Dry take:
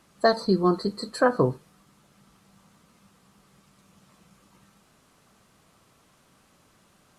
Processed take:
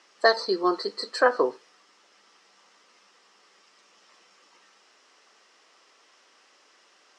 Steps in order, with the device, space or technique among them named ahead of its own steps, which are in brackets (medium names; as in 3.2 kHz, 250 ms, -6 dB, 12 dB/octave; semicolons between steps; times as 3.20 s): phone speaker on a table (cabinet simulation 370–7300 Hz, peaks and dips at 630 Hz -3 dB, 1.9 kHz +6 dB, 2.9 kHz +5 dB, 5.3 kHz +9 dB); trim +1.5 dB